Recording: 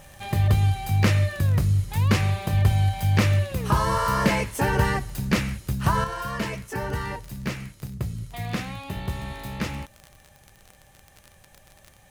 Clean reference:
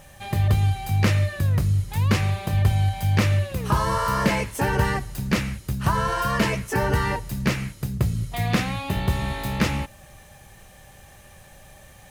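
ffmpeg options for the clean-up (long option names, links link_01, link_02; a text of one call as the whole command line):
ffmpeg -i in.wav -af "adeclick=threshold=4,asetnsamples=nb_out_samples=441:pad=0,asendcmd='6.04 volume volume 7dB',volume=0dB" out.wav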